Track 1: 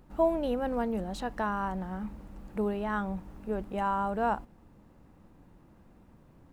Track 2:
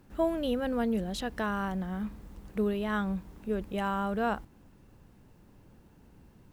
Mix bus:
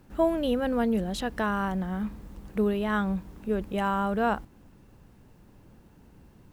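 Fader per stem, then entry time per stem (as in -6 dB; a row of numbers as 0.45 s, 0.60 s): -12.0 dB, +2.5 dB; 0.00 s, 0.00 s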